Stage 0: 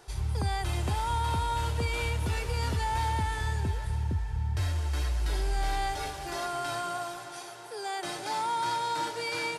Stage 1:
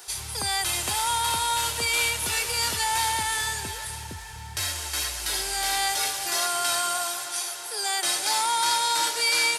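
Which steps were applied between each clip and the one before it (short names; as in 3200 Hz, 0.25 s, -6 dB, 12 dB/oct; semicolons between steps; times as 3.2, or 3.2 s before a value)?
tilt +4.5 dB/oct; gain +4.5 dB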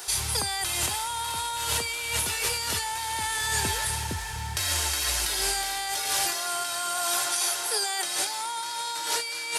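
negative-ratio compressor -31 dBFS, ratio -1; gain +2 dB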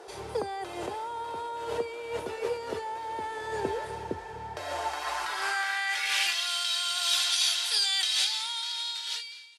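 ending faded out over 1.19 s; band-pass sweep 450 Hz -> 3500 Hz, 4.36–6.55; gain +9 dB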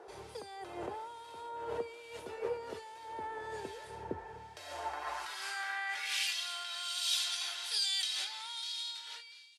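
harmonic tremolo 1.2 Hz, depth 70%, crossover 2200 Hz; gain -5 dB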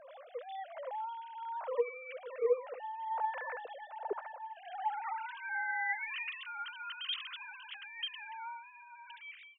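sine-wave speech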